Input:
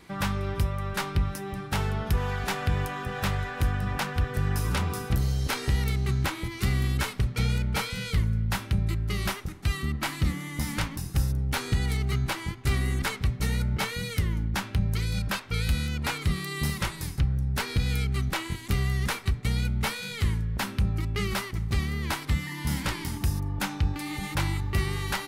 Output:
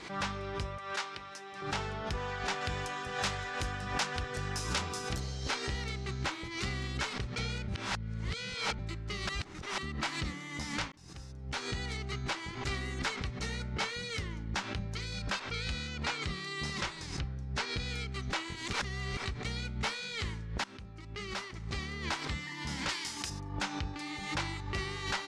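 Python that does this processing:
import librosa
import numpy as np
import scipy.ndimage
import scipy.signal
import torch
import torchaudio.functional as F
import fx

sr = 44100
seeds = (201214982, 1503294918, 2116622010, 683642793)

y = fx.highpass(x, sr, hz=840.0, slope=6, at=(0.78, 1.62))
y = fx.high_shelf(y, sr, hz=5400.0, db=12.0, at=(2.61, 5.2))
y = fx.lowpass(y, sr, hz=9200.0, slope=12, at=(15.51, 17.77))
y = fx.tilt_eq(y, sr, slope=3.0, at=(22.89, 23.3))
y = fx.edit(y, sr, fx.reverse_span(start_s=7.68, length_s=1.11),
    fx.reverse_span(start_s=9.29, length_s=0.49),
    fx.fade_in_span(start_s=10.92, length_s=0.9),
    fx.reverse_span(start_s=18.73, length_s=0.44),
    fx.fade_in_from(start_s=20.64, length_s=1.2, floor_db=-16.5), tone=tone)
y = scipy.signal.sosfilt(scipy.signal.butter(4, 6900.0, 'lowpass', fs=sr, output='sos'), y)
y = fx.bass_treble(y, sr, bass_db=-9, treble_db=3)
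y = fx.pre_swell(y, sr, db_per_s=74.0)
y = F.gain(torch.from_numpy(y), -4.5).numpy()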